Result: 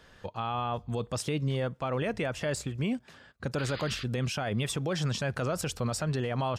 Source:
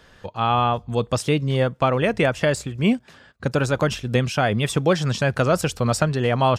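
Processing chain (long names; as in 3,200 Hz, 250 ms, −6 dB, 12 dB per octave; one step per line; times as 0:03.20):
sound drawn into the spectrogram noise, 0:03.58–0:04.04, 1,100–5,000 Hz −36 dBFS
brickwall limiter −17.5 dBFS, peak gain reduction 10.5 dB
level −5 dB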